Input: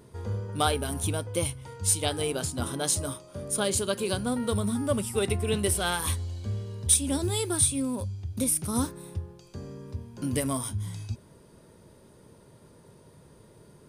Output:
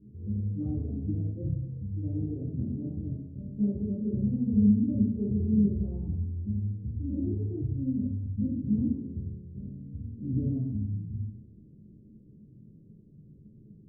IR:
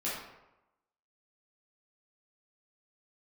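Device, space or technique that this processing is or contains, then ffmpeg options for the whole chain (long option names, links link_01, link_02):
next room: -filter_complex "[0:a]lowpass=frequency=260:width=0.5412,lowpass=frequency=260:width=1.3066[link_01];[1:a]atrim=start_sample=2205[link_02];[link_01][link_02]afir=irnorm=-1:irlink=0"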